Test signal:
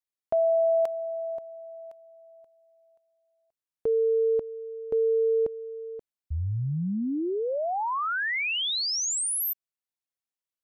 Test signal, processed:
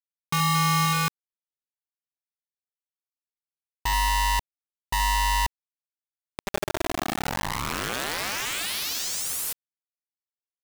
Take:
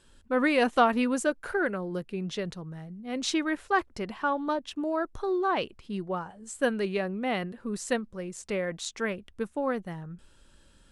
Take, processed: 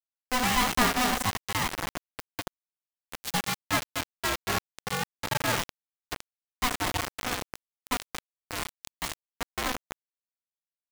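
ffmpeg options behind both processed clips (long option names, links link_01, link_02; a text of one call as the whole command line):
ffmpeg -i in.wav -af "aecho=1:1:75.8|227.4:0.355|0.501,acrusher=bits=3:mix=0:aa=0.000001,aeval=exprs='val(0)*sgn(sin(2*PI*500*n/s))':channel_layout=same,volume=-3.5dB" out.wav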